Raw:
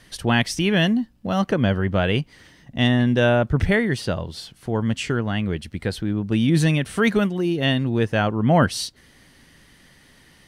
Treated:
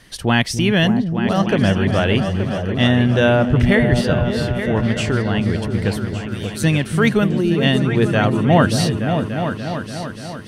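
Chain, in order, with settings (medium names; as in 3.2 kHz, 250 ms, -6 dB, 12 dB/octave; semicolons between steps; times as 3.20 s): 5.93–6.64 s: differentiator; delay with an opening low-pass 291 ms, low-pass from 200 Hz, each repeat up 2 oct, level -3 dB; trim +3 dB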